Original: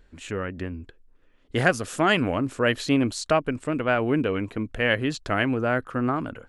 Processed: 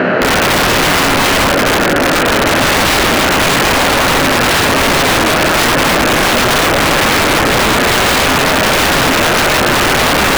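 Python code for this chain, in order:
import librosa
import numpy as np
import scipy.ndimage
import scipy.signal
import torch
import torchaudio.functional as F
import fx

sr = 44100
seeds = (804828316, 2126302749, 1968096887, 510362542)

y = fx.bin_compress(x, sr, power=0.2)
y = scipy.signal.sosfilt(scipy.signal.butter(4, 140.0, 'highpass', fs=sr, output='sos'), y)
y = fx.notch(y, sr, hz=3200.0, q=19.0)
y = fx.stretch_vocoder_free(y, sr, factor=1.6)
y = fx.air_absorb(y, sr, metres=290.0)
y = fx.rev_gated(y, sr, seeds[0], gate_ms=350, shape='rising', drr_db=-7.0)
y = fx.rider(y, sr, range_db=4, speed_s=0.5)
y = (np.mod(10.0 ** (9.0 / 20.0) * y + 1.0, 2.0) - 1.0) / 10.0 ** (9.0 / 20.0)
y = fx.high_shelf(y, sr, hz=3800.0, db=-6.5)
y = fx.env_flatten(y, sr, amount_pct=70)
y = y * 10.0 ** (4.0 / 20.0)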